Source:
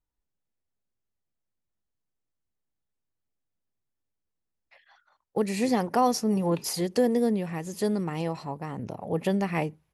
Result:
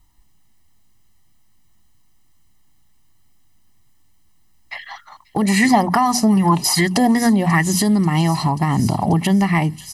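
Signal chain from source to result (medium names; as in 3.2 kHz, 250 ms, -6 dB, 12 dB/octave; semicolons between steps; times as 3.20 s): hum notches 60/120/180/240 Hz; comb 1 ms, depth 90%; feedback echo behind a high-pass 537 ms, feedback 73%, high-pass 4.5 kHz, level -14.5 dB; compression 6:1, threshold -37 dBFS, peak gain reduction 20 dB; peaking EQ 840 Hz -2.5 dB 2.4 oct; loudness maximiser +31 dB; 5.42–7.63 s: sweeping bell 2.5 Hz 560–1900 Hz +13 dB; trim -7 dB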